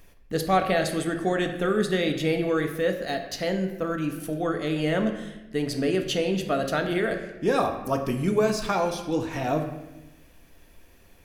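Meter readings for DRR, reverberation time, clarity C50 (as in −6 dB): 4.0 dB, 1.0 s, 8.0 dB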